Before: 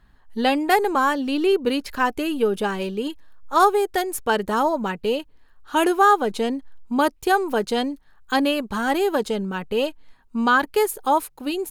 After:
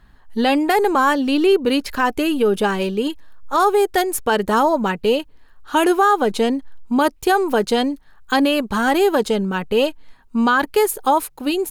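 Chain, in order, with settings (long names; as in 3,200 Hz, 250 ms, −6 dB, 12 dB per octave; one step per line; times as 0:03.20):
boost into a limiter +12 dB
level −6.5 dB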